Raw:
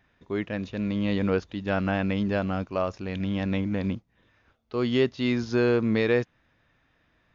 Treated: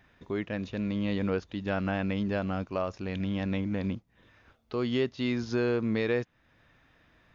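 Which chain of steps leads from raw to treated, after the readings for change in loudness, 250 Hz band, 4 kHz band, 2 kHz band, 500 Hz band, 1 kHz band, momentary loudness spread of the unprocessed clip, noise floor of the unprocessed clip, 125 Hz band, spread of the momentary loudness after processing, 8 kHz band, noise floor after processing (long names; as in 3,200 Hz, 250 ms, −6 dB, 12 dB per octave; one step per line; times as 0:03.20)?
−4.0 dB, −4.0 dB, −4.0 dB, −4.5 dB, −4.5 dB, −4.0 dB, 9 LU, −68 dBFS, −3.5 dB, 6 LU, can't be measured, −68 dBFS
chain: downward compressor 1.5 to 1, threshold −45 dBFS, peak gain reduction 9.5 dB
level +4 dB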